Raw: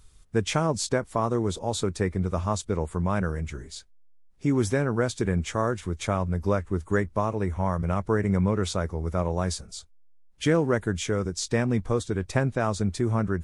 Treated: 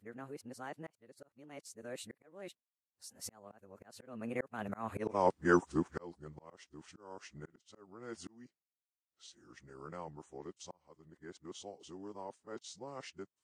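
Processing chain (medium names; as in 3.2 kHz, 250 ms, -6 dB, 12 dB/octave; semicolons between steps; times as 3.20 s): reverse the whole clip; Doppler pass-by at 5.08 s, 57 m/s, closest 5.6 m; high-pass 250 Hz 12 dB/octave; slow attack 794 ms; trim +16.5 dB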